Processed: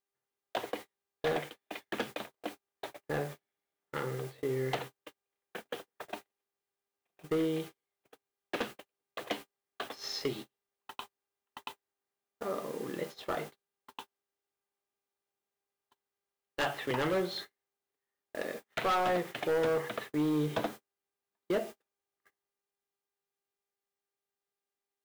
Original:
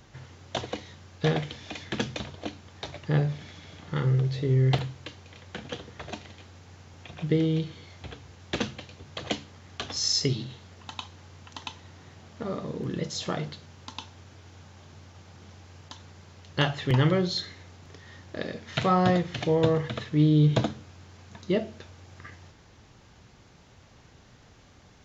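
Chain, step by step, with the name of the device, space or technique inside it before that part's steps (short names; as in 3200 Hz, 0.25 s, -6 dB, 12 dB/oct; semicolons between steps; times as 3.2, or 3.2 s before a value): aircraft radio (BPF 380–2500 Hz; hard clip -25.5 dBFS, distortion -10 dB; buzz 400 Hz, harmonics 29, -56 dBFS -5 dB/oct; white noise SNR 17 dB; gate -41 dBFS, range -41 dB)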